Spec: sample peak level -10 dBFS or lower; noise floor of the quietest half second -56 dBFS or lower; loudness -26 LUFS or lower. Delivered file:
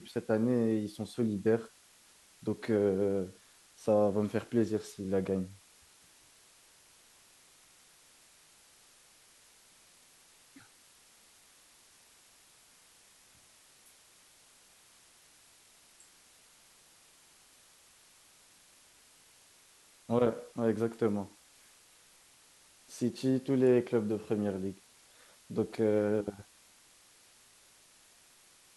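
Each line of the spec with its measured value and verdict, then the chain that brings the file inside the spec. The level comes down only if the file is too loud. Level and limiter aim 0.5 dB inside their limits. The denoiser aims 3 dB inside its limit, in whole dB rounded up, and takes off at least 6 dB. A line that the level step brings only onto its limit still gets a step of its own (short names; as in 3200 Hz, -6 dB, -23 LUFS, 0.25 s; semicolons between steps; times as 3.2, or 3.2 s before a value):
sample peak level -14.5 dBFS: OK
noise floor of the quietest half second -62 dBFS: OK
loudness -32.0 LUFS: OK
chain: none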